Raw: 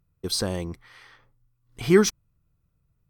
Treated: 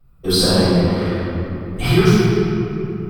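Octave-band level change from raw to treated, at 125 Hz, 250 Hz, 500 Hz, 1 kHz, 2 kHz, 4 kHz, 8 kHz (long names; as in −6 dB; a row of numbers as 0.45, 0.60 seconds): +16.0, +10.5, +7.0, +12.0, +8.5, +11.5, +3.5 decibels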